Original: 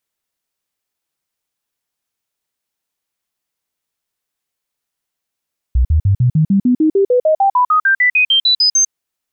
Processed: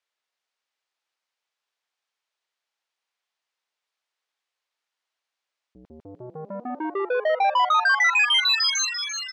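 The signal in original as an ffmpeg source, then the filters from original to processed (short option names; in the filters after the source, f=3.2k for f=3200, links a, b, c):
-f lavfi -i "aevalsrc='0.376*clip(min(mod(t,0.15),0.1-mod(t,0.15))/0.005,0,1)*sin(2*PI*62*pow(2,floor(t/0.15)/3)*mod(t,0.15))':d=3.15:s=44100"
-filter_complex "[0:a]asoftclip=type=tanh:threshold=-16.5dB,highpass=590,lowpass=4.7k,asplit=2[a][b];[b]asplit=7[c][d][e][f][g][h][i];[c]adelay=342,afreqshift=110,volume=-8.5dB[j];[d]adelay=684,afreqshift=220,volume=-13.1dB[k];[e]adelay=1026,afreqshift=330,volume=-17.7dB[l];[f]adelay=1368,afreqshift=440,volume=-22.2dB[m];[g]adelay=1710,afreqshift=550,volume=-26.8dB[n];[h]adelay=2052,afreqshift=660,volume=-31.4dB[o];[i]adelay=2394,afreqshift=770,volume=-36dB[p];[j][k][l][m][n][o][p]amix=inputs=7:normalize=0[q];[a][q]amix=inputs=2:normalize=0"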